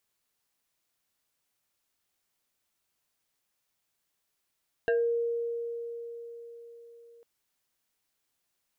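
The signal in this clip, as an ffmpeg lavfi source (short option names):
-f lavfi -i "aevalsrc='0.0794*pow(10,-3*t/4.58)*sin(2*PI*468*t+1.1*pow(10,-3*t/0.29)*sin(2*PI*2.43*468*t))':d=2.35:s=44100"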